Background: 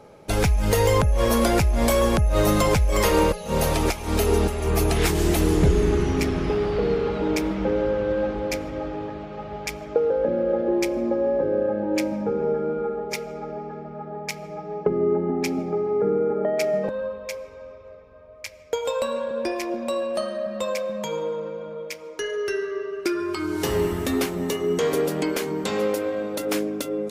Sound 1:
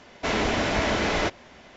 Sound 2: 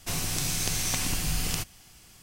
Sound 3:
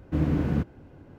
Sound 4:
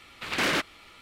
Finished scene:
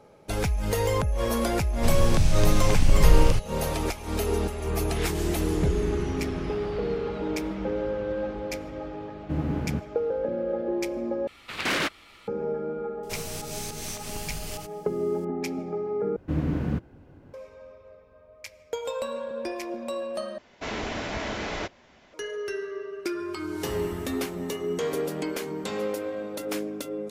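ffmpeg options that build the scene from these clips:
ffmpeg -i bed.wav -i cue0.wav -i cue1.wav -i cue2.wav -i cue3.wav -filter_complex "[2:a]asplit=2[link_01][link_02];[3:a]asplit=2[link_03][link_04];[0:a]volume=-6dB[link_05];[link_01]aemphasis=mode=reproduction:type=bsi[link_06];[link_03]aresample=32000,aresample=44100[link_07];[link_02]alimiter=limit=-19dB:level=0:latency=1:release=167[link_08];[link_05]asplit=4[link_09][link_10][link_11][link_12];[link_09]atrim=end=11.274[link_13];[4:a]atrim=end=1.01,asetpts=PTS-STARTPTS,volume=-0.5dB[link_14];[link_10]atrim=start=12.276:end=16.164[link_15];[link_04]atrim=end=1.18,asetpts=PTS-STARTPTS,volume=-2dB[link_16];[link_11]atrim=start=17.336:end=20.384[link_17];[1:a]atrim=end=1.76,asetpts=PTS-STARTPTS,volume=-7.5dB[link_18];[link_12]atrim=start=22.136[link_19];[link_06]atrim=end=2.22,asetpts=PTS-STARTPTS,afade=type=in:duration=0.004:curve=hsin,afade=type=out:start_time=2.216:duration=0.004:curve=hsin,adelay=1760[link_20];[link_07]atrim=end=1.18,asetpts=PTS-STARTPTS,volume=-3.5dB,afade=type=in:duration=0.004:curve=hsin,afade=type=out:start_time=1.176:duration=0.004:curve=hsin,adelay=9170[link_21];[link_08]atrim=end=2.22,asetpts=PTS-STARTPTS,volume=-5.5dB,afade=type=in:duration=0.004:curve=hsin,afade=type=out:start_time=2.216:duration=0.004:curve=hsin,adelay=13030[link_22];[link_13][link_14]acrossfade=duration=0.004:curve1=hsin:curve2=hsin[link_23];[link_23][link_15]acrossfade=duration=0.004:curve1=hsin:curve2=hsin[link_24];[link_24][link_16]acrossfade=duration=0.004:curve1=hsin:curve2=hsin[link_25];[link_25][link_17]acrossfade=duration=0.004:curve1=hsin:curve2=hsin[link_26];[link_26][link_18]acrossfade=duration=0.004:curve1=hsin:curve2=hsin[link_27];[link_27][link_19]acrossfade=duration=0.004:curve1=hsin:curve2=hsin[link_28];[link_28][link_20][link_21][link_22]amix=inputs=4:normalize=0" out.wav

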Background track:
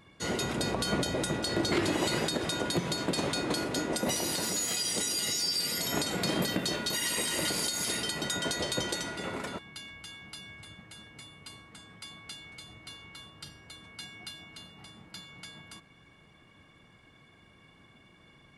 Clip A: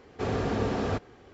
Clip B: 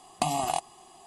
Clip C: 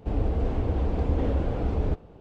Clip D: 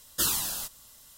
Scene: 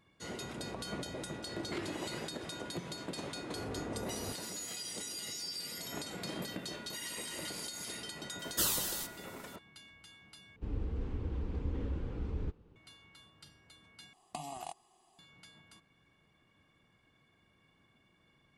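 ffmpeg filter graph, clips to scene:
ffmpeg -i bed.wav -i cue0.wav -i cue1.wav -i cue2.wav -i cue3.wav -filter_complex "[0:a]volume=-11dB[link_01];[1:a]lowpass=1600[link_02];[3:a]equalizer=frequency=670:width=2.5:gain=-14.5[link_03];[link_01]asplit=3[link_04][link_05][link_06];[link_04]atrim=end=10.564[link_07];[link_03]atrim=end=2.2,asetpts=PTS-STARTPTS,volume=-11dB[link_08];[link_05]atrim=start=12.756:end=14.134[link_09];[2:a]atrim=end=1.06,asetpts=PTS-STARTPTS,volume=-15.5dB[link_10];[link_06]atrim=start=15.186[link_11];[link_02]atrim=end=1.33,asetpts=PTS-STARTPTS,volume=-14dB,afade=type=in:duration=0.004:curve=hsin,afade=type=out:start_time=1.326:duration=0.004:curve=hsin,adelay=3350[link_12];[4:a]atrim=end=1.17,asetpts=PTS-STARTPTS,volume=-5dB,afade=type=in:duration=0.004:curve=hsin,afade=type=out:start_time=1.166:duration=0.004:curve=hsin,adelay=8390[link_13];[link_07][link_08]acrossfade=duration=0.004:curve1=hsin:curve2=hsin[link_14];[link_14][link_09]acrossfade=duration=0.004:curve1=hsin:curve2=hsin[link_15];[link_15][link_10]acrossfade=duration=0.004:curve1=hsin:curve2=hsin[link_16];[link_16][link_11]acrossfade=duration=0.004:curve1=hsin:curve2=hsin[link_17];[link_17][link_12][link_13]amix=inputs=3:normalize=0" out.wav

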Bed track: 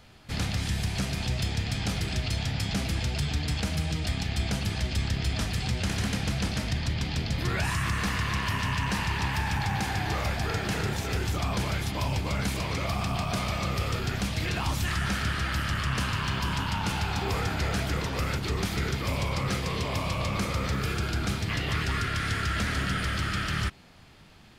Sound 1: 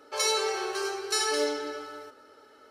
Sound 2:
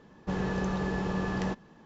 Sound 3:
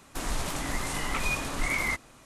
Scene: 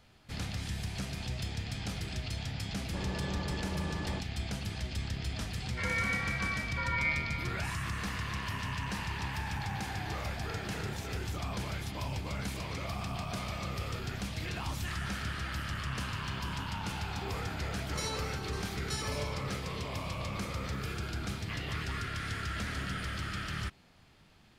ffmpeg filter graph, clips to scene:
ffmpeg -i bed.wav -i cue0.wav -i cue1.wav -filter_complex "[1:a]asplit=2[link_01][link_02];[0:a]volume=-8dB[link_03];[2:a]aecho=1:1:3.4:0.33[link_04];[link_01]lowpass=frequency=2300:width_type=q:width=0.5098,lowpass=frequency=2300:width_type=q:width=0.6013,lowpass=frequency=2300:width_type=q:width=0.9,lowpass=frequency=2300:width_type=q:width=2.563,afreqshift=-2700[link_05];[link_02]highpass=410[link_06];[link_04]atrim=end=1.85,asetpts=PTS-STARTPTS,volume=-7.5dB,afade=type=in:duration=0.004:curve=hsin,afade=type=out:start_time=1.846:duration=0.004:curve=hsin,adelay=2660[link_07];[link_05]atrim=end=2.7,asetpts=PTS-STARTPTS,volume=-4dB,afade=type=in:duration=0.004:curve=hsin,afade=type=out:start_time=2.696:duration=0.004:curve=hsin,adelay=249165S[link_08];[link_06]atrim=end=2.7,asetpts=PTS-STARTPTS,volume=-11.5dB,afade=type=in:duration=0.004:curve=hsin,afade=type=out:start_time=2.696:duration=0.004:curve=hsin,adelay=17780[link_09];[link_03][link_07][link_08][link_09]amix=inputs=4:normalize=0" out.wav

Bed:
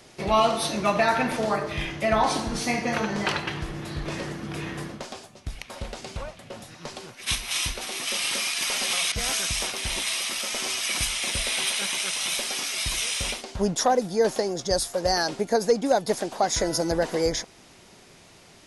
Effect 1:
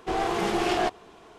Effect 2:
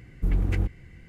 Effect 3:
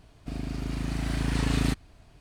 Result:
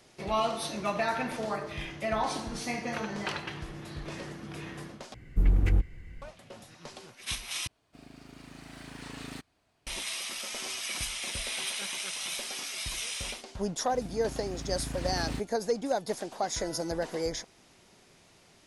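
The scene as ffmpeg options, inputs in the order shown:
ffmpeg -i bed.wav -i cue0.wav -i cue1.wav -i cue2.wav -filter_complex "[3:a]asplit=2[link_01][link_02];[0:a]volume=-8dB[link_03];[2:a]asubboost=boost=7.5:cutoff=67[link_04];[link_01]highpass=frequency=370:poles=1[link_05];[link_03]asplit=3[link_06][link_07][link_08];[link_06]atrim=end=5.144[link_09];[link_04]atrim=end=1.08,asetpts=PTS-STARTPTS,volume=-1.5dB[link_10];[link_07]atrim=start=6.216:end=7.674[link_11];[link_05]atrim=end=2.2,asetpts=PTS-STARTPTS,volume=-10.5dB[link_12];[link_08]atrim=start=9.866[link_13];[link_02]atrim=end=2.2,asetpts=PTS-STARTPTS,volume=-9.5dB,afade=type=in:duration=0.004:curve=hsin,afade=type=out:start_time=2.196:duration=0.004:curve=hsin,adelay=13660[link_14];[link_09][link_10]acrossfade=duration=0.004:curve1=hsin:curve2=hsin[link_15];[link_15][link_11]acrossfade=duration=0.004:curve1=hsin:curve2=hsin[link_16];[link_16][link_12]acrossfade=duration=0.004:curve1=hsin:curve2=hsin[link_17];[link_17][link_13]acrossfade=duration=0.004:curve1=hsin:curve2=hsin[link_18];[link_18][link_14]amix=inputs=2:normalize=0" out.wav

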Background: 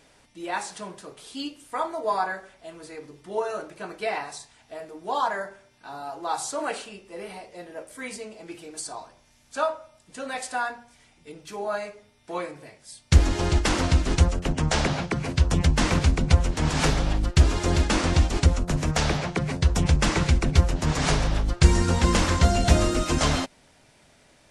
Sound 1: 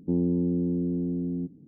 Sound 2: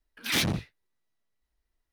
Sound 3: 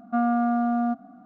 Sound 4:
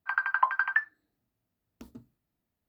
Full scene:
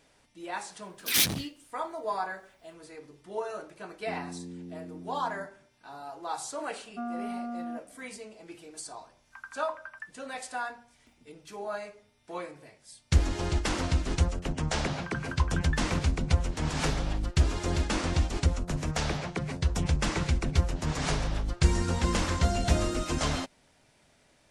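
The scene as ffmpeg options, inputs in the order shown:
ffmpeg -i bed.wav -i cue0.wav -i cue1.wav -i cue2.wav -i cue3.wav -filter_complex "[4:a]asplit=2[link_01][link_02];[0:a]volume=-6.5dB[link_03];[2:a]crystalizer=i=3.5:c=0[link_04];[link_02]aeval=exprs='if(lt(val(0),0),0.708*val(0),val(0))':channel_layout=same[link_05];[link_04]atrim=end=1.92,asetpts=PTS-STARTPTS,volume=-5.5dB,afade=type=in:duration=0.004:curve=hsin,afade=type=out:start_time=1.916:duration=0.004:curve=hsin,adelay=820[link_06];[1:a]atrim=end=1.67,asetpts=PTS-STARTPTS,volume=-16dB,afade=type=in:duration=0.004:curve=hsin,afade=type=out:start_time=1.666:duration=0.004:curve=hsin,adelay=3990[link_07];[3:a]atrim=end=1.25,asetpts=PTS-STARTPTS,volume=-12.5dB,afade=type=in:duration=0.004:curve=hsin,afade=type=out:start_time=1.246:duration=0.004:curve=hsin,adelay=6840[link_08];[link_01]atrim=end=2.68,asetpts=PTS-STARTPTS,volume=-17dB,afade=type=in:duration=0.004:curve=hsin,afade=type=out:start_time=2.676:duration=0.004:curve=hsin,adelay=9260[link_09];[link_05]atrim=end=2.68,asetpts=PTS-STARTPTS,volume=-11dB,afade=type=in:duration=0.004:curve=hsin,afade=type=out:start_time=2.676:duration=0.004:curve=hsin,adelay=14970[link_10];[link_03][link_06][link_07][link_08][link_09][link_10]amix=inputs=6:normalize=0" out.wav

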